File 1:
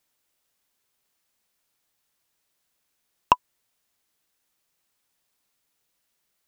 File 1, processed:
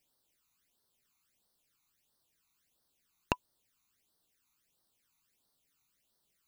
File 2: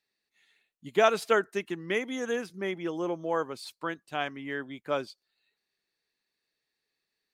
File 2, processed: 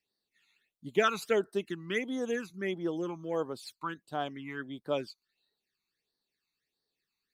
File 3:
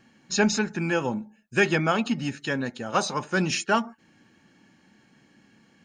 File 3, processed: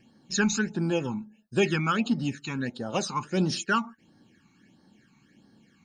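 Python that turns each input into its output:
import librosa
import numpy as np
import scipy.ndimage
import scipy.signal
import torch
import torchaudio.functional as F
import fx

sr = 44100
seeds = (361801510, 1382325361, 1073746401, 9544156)

y = fx.phaser_stages(x, sr, stages=12, low_hz=530.0, high_hz=2500.0, hz=1.5, feedback_pct=20)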